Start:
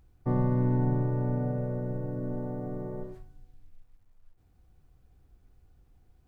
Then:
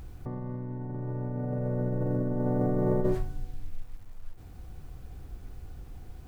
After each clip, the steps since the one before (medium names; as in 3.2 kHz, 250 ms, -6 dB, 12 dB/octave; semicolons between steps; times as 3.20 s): compressor with a negative ratio -39 dBFS, ratio -1; trim +9 dB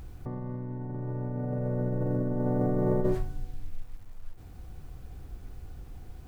no audible change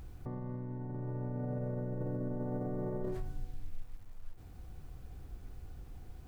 peak limiter -24.5 dBFS, peak gain reduction 11 dB; trim -4.5 dB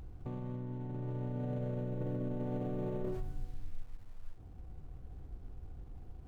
median filter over 25 samples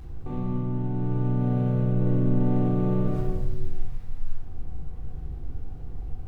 reverberation RT60 1.2 s, pre-delay 3 ms, DRR -7.5 dB; trim +1.5 dB